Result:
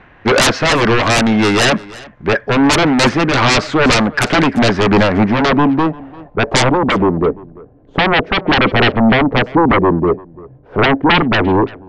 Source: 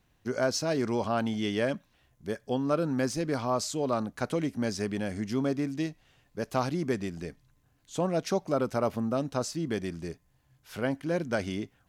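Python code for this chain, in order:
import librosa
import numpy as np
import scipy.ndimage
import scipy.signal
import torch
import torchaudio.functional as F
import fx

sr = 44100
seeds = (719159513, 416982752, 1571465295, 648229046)

p1 = fx.bass_treble(x, sr, bass_db=-8, treble_db=-8)
p2 = fx.rider(p1, sr, range_db=3, speed_s=2.0)
p3 = p1 + (p2 * 10.0 ** (2.5 / 20.0))
p4 = fx.filter_sweep_lowpass(p3, sr, from_hz=1900.0, to_hz=470.0, start_s=4.35, end_s=7.38, q=1.6)
p5 = fx.fold_sine(p4, sr, drive_db=19, ceiling_db=-5.5)
p6 = p5 + fx.echo_single(p5, sr, ms=342, db=-22.0, dry=0)
y = fx.am_noise(p6, sr, seeds[0], hz=5.7, depth_pct=50)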